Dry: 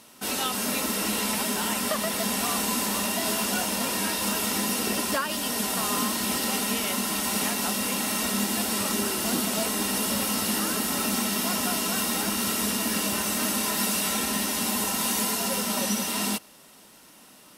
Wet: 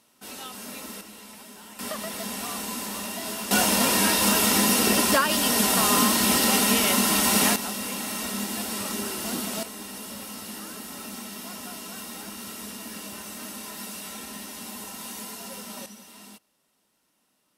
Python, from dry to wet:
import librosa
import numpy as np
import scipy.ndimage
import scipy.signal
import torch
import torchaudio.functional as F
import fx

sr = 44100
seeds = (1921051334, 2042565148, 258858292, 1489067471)

y = fx.gain(x, sr, db=fx.steps((0.0, -11.0), (1.01, -18.0), (1.79, -6.0), (3.51, 6.0), (7.56, -4.0), (9.63, -11.5), (15.86, -19.5)))